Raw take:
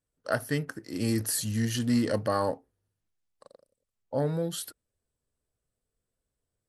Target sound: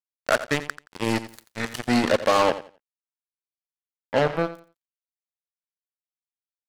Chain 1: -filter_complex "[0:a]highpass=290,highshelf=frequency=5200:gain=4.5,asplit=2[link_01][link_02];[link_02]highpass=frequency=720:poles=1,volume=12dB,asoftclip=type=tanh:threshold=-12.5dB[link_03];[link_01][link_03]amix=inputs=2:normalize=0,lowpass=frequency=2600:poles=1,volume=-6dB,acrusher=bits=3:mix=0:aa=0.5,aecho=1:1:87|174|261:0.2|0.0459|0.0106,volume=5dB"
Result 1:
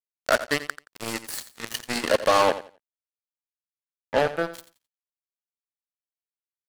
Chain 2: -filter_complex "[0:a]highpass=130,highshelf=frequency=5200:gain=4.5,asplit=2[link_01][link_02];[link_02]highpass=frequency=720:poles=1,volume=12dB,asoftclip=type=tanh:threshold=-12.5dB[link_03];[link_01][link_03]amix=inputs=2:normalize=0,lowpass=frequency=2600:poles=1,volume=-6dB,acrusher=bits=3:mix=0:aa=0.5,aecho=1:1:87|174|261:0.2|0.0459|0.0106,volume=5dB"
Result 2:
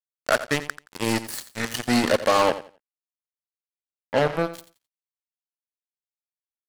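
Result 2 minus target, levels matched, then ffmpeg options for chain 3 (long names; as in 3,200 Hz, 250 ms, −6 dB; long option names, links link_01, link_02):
8,000 Hz band +4.0 dB
-filter_complex "[0:a]highpass=130,highshelf=frequency=5200:gain=-5.5,asplit=2[link_01][link_02];[link_02]highpass=frequency=720:poles=1,volume=12dB,asoftclip=type=tanh:threshold=-12.5dB[link_03];[link_01][link_03]amix=inputs=2:normalize=0,lowpass=frequency=2600:poles=1,volume=-6dB,acrusher=bits=3:mix=0:aa=0.5,aecho=1:1:87|174|261:0.2|0.0459|0.0106,volume=5dB"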